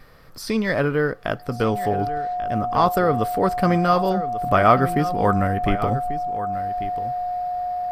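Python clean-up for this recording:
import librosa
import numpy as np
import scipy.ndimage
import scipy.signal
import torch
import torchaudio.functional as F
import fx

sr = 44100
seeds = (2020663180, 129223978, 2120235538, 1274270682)

y = fx.notch(x, sr, hz=720.0, q=30.0)
y = fx.fix_echo_inverse(y, sr, delay_ms=1140, level_db=-13.0)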